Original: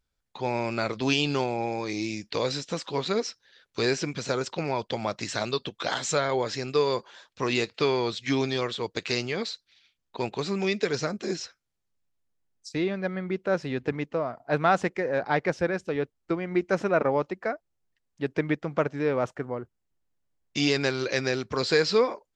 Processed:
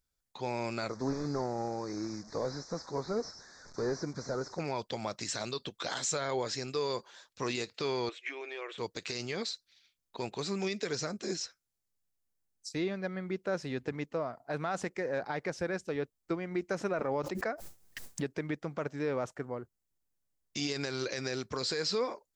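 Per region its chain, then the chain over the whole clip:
0.89–4.60 s: one-bit delta coder 32 kbps, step -40 dBFS + Butterworth band-stop 2.9 kHz, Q 0.91
8.09–8.78 s: compression 4:1, threshold -31 dBFS + brick-wall FIR high-pass 290 Hz + resonant high shelf 3.4 kHz -10.5 dB, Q 3
16.99–18.36 s: gate with hold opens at -58 dBFS, closes at -63 dBFS + swell ahead of each attack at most 24 dB/s
whole clip: treble shelf 5 kHz +11 dB; peak limiter -16.5 dBFS; peaking EQ 2.9 kHz -3.5 dB 0.77 oct; trim -6 dB

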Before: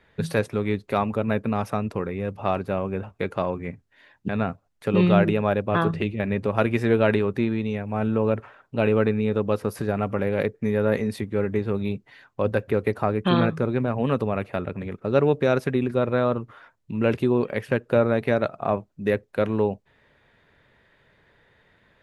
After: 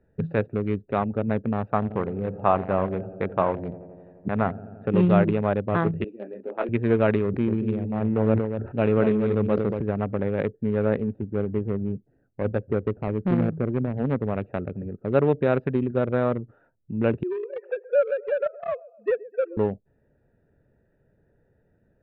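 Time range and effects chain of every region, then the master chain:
1.64–4.88 s: dynamic bell 1 kHz, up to +8 dB, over -41 dBFS, Q 1.1 + bucket-brigade echo 86 ms, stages 2048, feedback 78%, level -14 dB
6.04–6.69 s: high-pass 290 Hz 24 dB/octave + detune thickener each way 47 cents
7.24–9.81 s: de-hum 88.11 Hz, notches 4 + delay 236 ms -6 dB + decay stretcher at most 57 dB/s
11.04–14.28 s: median filter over 41 samples + treble shelf 5 kHz -9.5 dB
17.23–19.57 s: formants replaced by sine waves + high-pass 450 Hz 24 dB/octave + feedback delay 128 ms, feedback 44%, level -16 dB
whole clip: local Wiener filter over 41 samples; Bessel low-pass 2.2 kHz, order 6

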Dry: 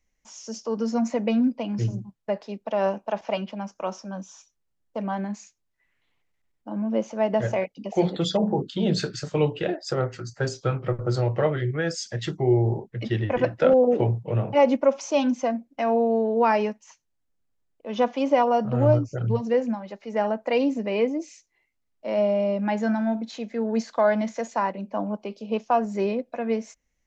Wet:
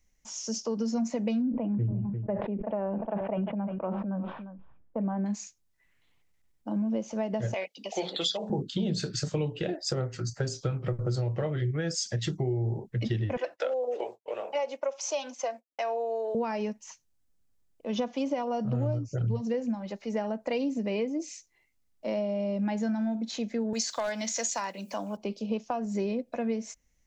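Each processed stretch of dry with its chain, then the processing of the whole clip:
1.42–5.26 s: Gaussian low-pass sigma 5 samples + delay 350 ms -22.5 dB + decay stretcher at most 45 dB/s
7.54–8.50 s: high-pass 520 Hz + peaking EQ 3.4 kHz +8 dB 1.3 oct
13.37–16.35 s: high-pass 490 Hz 24 dB/octave + expander -43 dBFS
23.73–25.17 s: tilt EQ +4.5 dB/octave + upward compressor, threshold -35 dBFS + hard clipper -15.5 dBFS
whole clip: tone controls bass +5 dB, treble +6 dB; compression 6:1, threshold -26 dBFS; dynamic bell 1.2 kHz, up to -4 dB, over -42 dBFS, Q 0.76

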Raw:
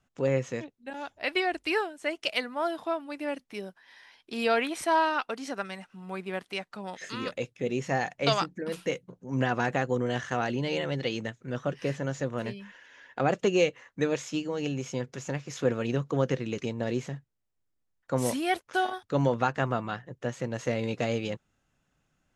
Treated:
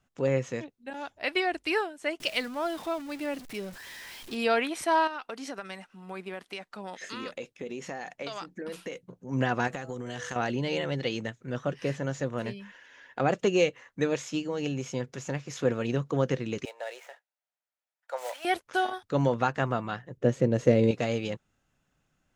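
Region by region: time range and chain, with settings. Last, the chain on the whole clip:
2.20–4.35 s: jump at every zero crossing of -39.5 dBFS + peaking EQ 950 Hz -3.5 dB 1.7 oct
5.07–9.03 s: peaking EQ 120 Hz -12.5 dB 0.72 oct + compression 12:1, threshold -32 dBFS
9.67–10.36 s: treble shelf 4.5 kHz +11 dB + de-hum 163.2 Hz, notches 8 + compression 12:1, threshold -31 dBFS
16.65–18.45 s: median filter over 9 samples + steep high-pass 570 Hz + band-stop 1.1 kHz, Q 7.1
20.17–20.91 s: resonant low shelf 640 Hz +8 dB, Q 1.5 + tape noise reduction on one side only decoder only
whole clip: none

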